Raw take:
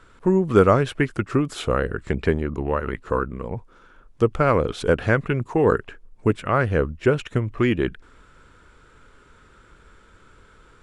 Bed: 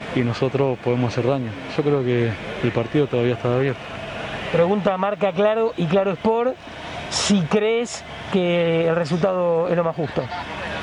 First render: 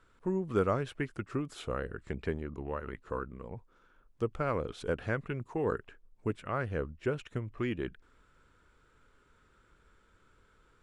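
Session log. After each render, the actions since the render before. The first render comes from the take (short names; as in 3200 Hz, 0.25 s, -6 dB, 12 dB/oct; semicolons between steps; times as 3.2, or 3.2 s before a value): gain -13.5 dB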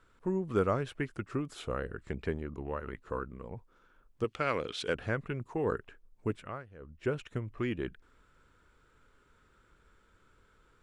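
4.24–4.95 weighting filter D; 6.37–7.06 dip -18 dB, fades 0.27 s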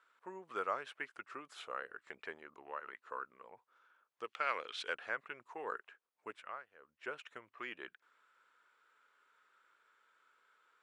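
HPF 960 Hz 12 dB/oct; high shelf 4300 Hz -10.5 dB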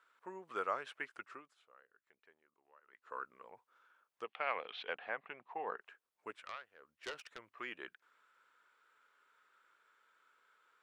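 1.22–3.21 dip -22 dB, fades 0.33 s; 4.24–5.81 speaker cabinet 140–3500 Hz, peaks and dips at 180 Hz +6 dB, 360 Hz -3 dB, 760 Hz +8 dB, 1400 Hz -6 dB; 6.44–7.39 self-modulated delay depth 0.24 ms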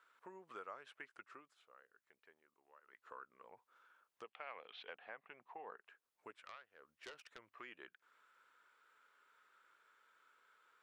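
compressor 2:1, threshold -57 dBFS, peak gain reduction 14 dB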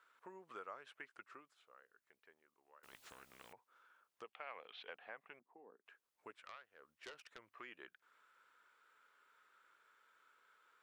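2.83–3.53 spectral compressor 4:1; 5.39–5.86 band-pass 270 Hz, Q 1.9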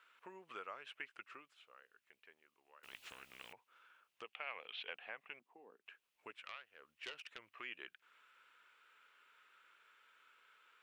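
bell 2700 Hz +11.5 dB 0.85 oct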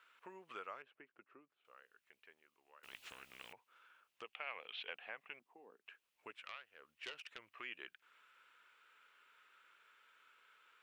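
0.82–1.65 band-pass 260 Hz, Q 0.75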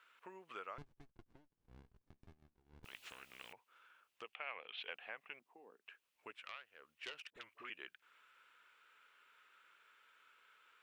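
0.78–2.85 running maximum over 65 samples; 4.35–4.78 LPF 3900 Hz; 7.3–7.7 dispersion highs, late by 49 ms, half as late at 730 Hz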